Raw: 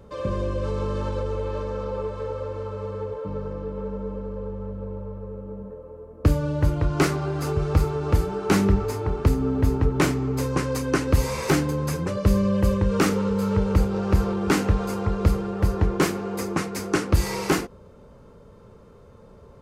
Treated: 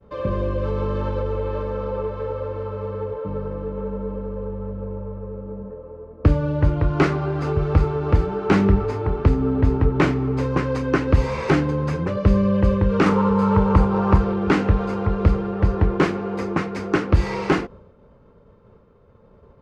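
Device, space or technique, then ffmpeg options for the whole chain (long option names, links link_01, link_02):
hearing-loss simulation: -filter_complex "[0:a]lowpass=3000,agate=range=-33dB:threshold=-42dB:ratio=3:detection=peak,asettb=1/sr,asplit=3[link_01][link_02][link_03];[link_01]atrim=end=13.064[link_04];[link_02]atrim=start=13.06:end=14.18,asetpts=PTS-STARTPTS,afade=type=in:duration=0.004:curve=qsin,afade=type=out:start_time=1.116:duration=0.004:curve=qsin,equalizer=frequency=160:width_type=o:width=0.67:gain=4,equalizer=frequency=1000:width_type=o:width=0.67:gain=12,equalizer=frequency=10000:width_type=o:width=0.67:gain=7[link_05];[link_03]atrim=start=14.176[link_06];[link_04][link_05]acrossfade=duration=0.004:curve1=hsin:curve2=qsin[link_07];[link_07][link_06]acrossfade=duration=0.004:curve1=qsin:curve2=hsin,volume=3dB"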